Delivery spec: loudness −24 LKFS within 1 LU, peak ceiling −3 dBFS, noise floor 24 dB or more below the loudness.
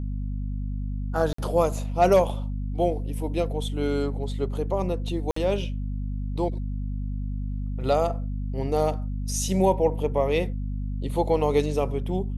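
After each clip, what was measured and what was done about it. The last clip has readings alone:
number of dropouts 2; longest dropout 54 ms; mains hum 50 Hz; hum harmonics up to 250 Hz; level of the hum −27 dBFS; integrated loudness −26.5 LKFS; sample peak −8.0 dBFS; target loudness −24.0 LKFS
→ repair the gap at 0:01.33/0:05.31, 54 ms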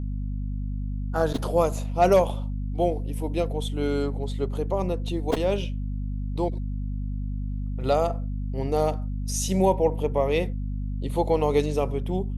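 number of dropouts 0; mains hum 50 Hz; hum harmonics up to 250 Hz; level of the hum −27 dBFS
→ hum removal 50 Hz, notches 5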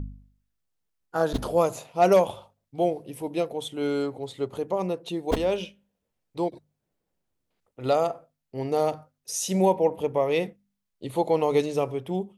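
mains hum none found; integrated loudness −26.5 LKFS; sample peak −9.0 dBFS; target loudness −24.0 LKFS
→ level +2.5 dB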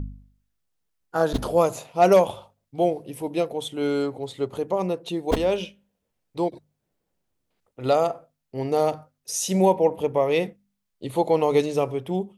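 integrated loudness −24.0 LKFS; sample peak −6.5 dBFS; background noise floor −79 dBFS

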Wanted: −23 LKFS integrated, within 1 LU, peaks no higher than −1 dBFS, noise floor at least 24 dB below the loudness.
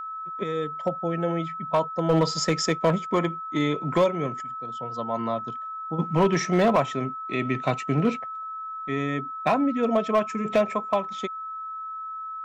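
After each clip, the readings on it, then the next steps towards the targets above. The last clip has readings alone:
share of clipped samples 0.6%; peaks flattened at −14.0 dBFS; interfering tone 1,300 Hz; level of the tone −32 dBFS; integrated loudness −26.0 LKFS; sample peak −14.0 dBFS; target loudness −23.0 LKFS
→ clipped peaks rebuilt −14 dBFS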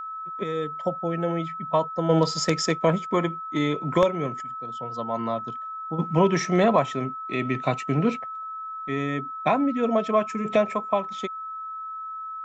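share of clipped samples 0.0%; interfering tone 1,300 Hz; level of the tone −32 dBFS
→ notch filter 1,300 Hz, Q 30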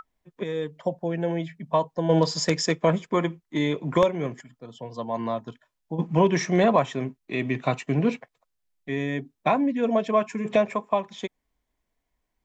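interfering tone none found; integrated loudness −25.5 LKFS; sample peak −5.0 dBFS; target loudness −23.0 LKFS
→ level +2.5 dB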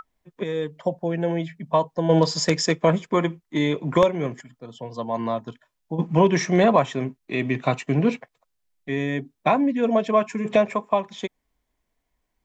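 integrated loudness −23.0 LKFS; sample peak −2.5 dBFS; background noise floor −77 dBFS

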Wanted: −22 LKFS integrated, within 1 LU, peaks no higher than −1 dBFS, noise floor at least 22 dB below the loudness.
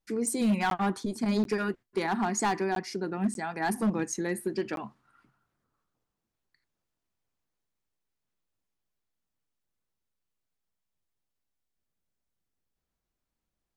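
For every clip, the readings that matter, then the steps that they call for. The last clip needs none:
share of clipped samples 0.6%; peaks flattened at −21.0 dBFS; number of dropouts 5; longest dropout 12 ms; integrated loudness −30.0 LKFS; sample peak −21.0 dBFS; target loudness −22.0 LKFS
→ clipped peaks rebuilt −21 dBFS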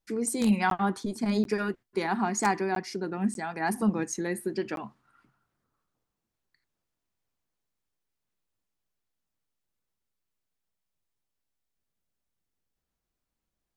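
share of clipped samples 0.0%; number of dropouts 5; longest dropout 12 ms
→ repair the gap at 0:00.70/0:01.44/0:02.75/0:03.34/0:04.76, 12 ms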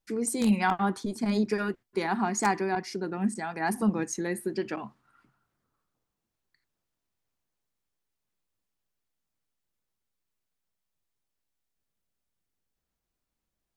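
number of dropouts 0; integrated loudness −29.0 LKFS; sample peak −12.0 dBFS; target loudness −22.0 LKFS
→ level +7 dB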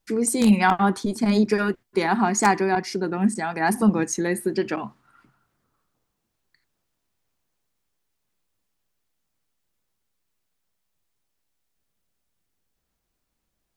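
integrated loudness −22.0 LKFS; sample peak −5.0 dBFS; background noise floor −78 dBFS

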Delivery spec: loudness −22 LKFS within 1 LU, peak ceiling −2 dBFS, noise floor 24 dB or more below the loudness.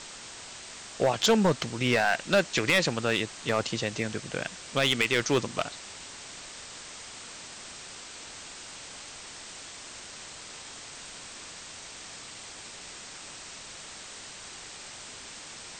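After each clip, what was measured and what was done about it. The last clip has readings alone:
share of clipped samples 0.3%; peaks flattened at −16.0 dBFS; background noise floor −45 dBFS; target noise floor −51 dBFS; integrated loudness −27.0 LKFS; sample peak −16.0 dBFS; target loudness −22.0 LKFS
→ clipped peaks rebuilt −16 dBFS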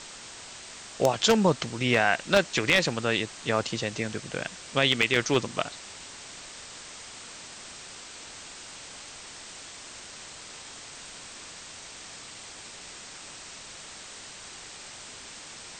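share of clipped samples 0.0%; background noise floor −45 dBFS; target noise floor −50 dBFS
→ noise reduction from a noise print 6 dB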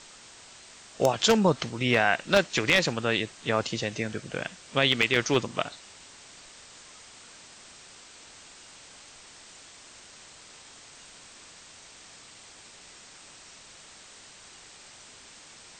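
background noise floor −51 dBFS; integrated loudness −25.5 LKFS; sample peak −7.0 dBFS; target loudness −22.0 LKFS
→ level +3.5 dB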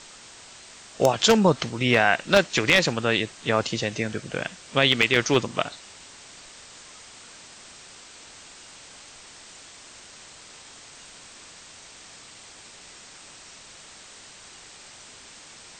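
integrated loudness −22.0 LKFS; sample peak −3.5 dBFS; background noise floor −47 dBFS

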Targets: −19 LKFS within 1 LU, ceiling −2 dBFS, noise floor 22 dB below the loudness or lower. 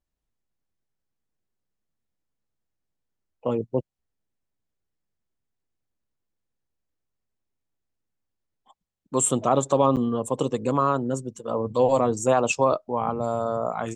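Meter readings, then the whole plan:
number of dropouts 1; longest dropout 8.3 ms; integrated loudness −24.0 LKFS; sample peak −7.5 dBFS; target loudness −19.0 LKFS
→ repair the gap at 0:09.96, 8.3 ms
level +5 dB

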